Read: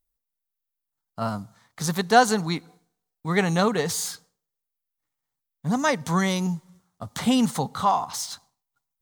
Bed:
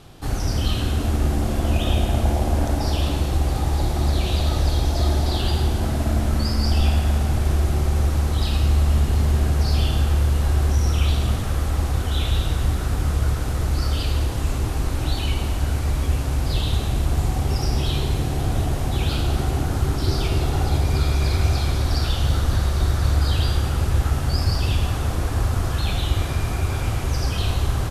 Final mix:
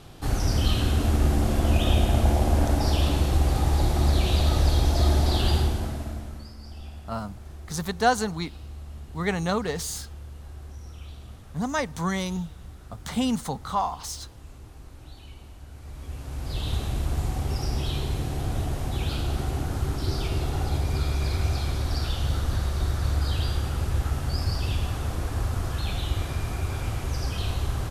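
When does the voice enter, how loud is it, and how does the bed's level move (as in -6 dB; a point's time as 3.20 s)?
5.90 s, -4.5 dB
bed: 5.56 s -1 dB
6.55 s -22 dB
15.69 s -22 dB
16.71 s -6 dB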